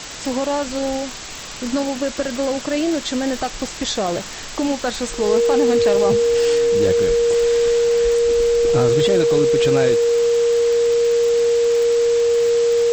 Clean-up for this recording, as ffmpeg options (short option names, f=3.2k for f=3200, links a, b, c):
-af "adeclick=t=4,bandreject=f=470:w=30,afwtdn=0.035"